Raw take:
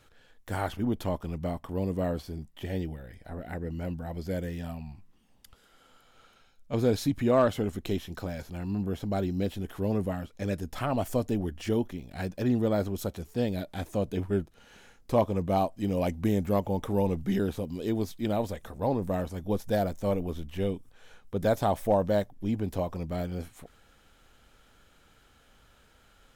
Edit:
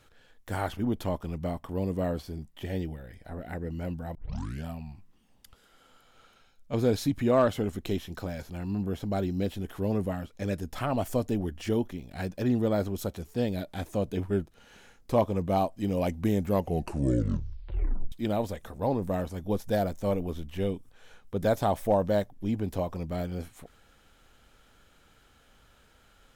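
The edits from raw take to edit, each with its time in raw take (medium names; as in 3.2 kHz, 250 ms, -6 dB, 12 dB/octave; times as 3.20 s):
4.15 s: tape start 0.51 s
16.52 s: tape stop 1.60 s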